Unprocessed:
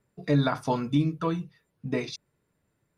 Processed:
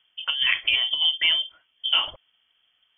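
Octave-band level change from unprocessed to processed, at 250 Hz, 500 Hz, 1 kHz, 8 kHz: under -30 dB, -18.0 dB, -5.5 dB, under -30 dB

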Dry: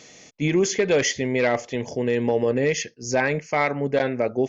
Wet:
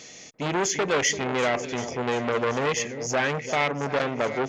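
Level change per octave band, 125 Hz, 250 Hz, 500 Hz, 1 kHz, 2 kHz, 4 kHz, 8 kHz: -4.5 dB, -5.5 dB, -4.5 dB, +1.5 dB, -0.5 dB, +0.5 dB, n/a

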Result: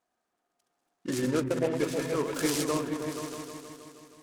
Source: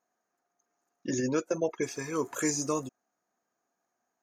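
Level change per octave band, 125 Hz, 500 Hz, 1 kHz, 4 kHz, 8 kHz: +4.5, +2.5, +2.0, +6.0, -2.0 dB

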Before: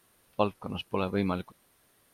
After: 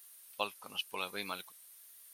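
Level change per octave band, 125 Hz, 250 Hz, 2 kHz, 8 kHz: -24.0 dB, -20.0 dB, 0.0 dB, n/a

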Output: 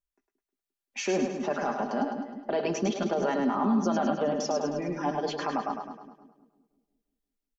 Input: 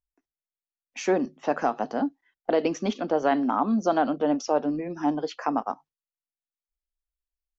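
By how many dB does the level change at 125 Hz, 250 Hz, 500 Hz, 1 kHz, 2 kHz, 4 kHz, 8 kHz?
+2.0 dB, -2.5 dB, -2.5 dB, -3.5 dB, -1.5 dB, +1.0 dB, n/a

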